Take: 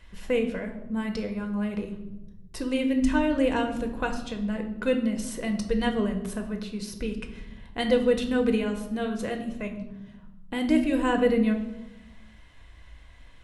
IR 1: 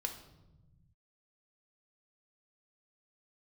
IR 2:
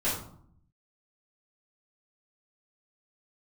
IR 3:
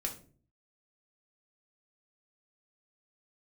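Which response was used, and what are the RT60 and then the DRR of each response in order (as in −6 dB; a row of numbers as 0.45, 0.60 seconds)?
1; 1.0, 0.60, 0.45 seconds; 4.0, −10.5, 0.5 decibels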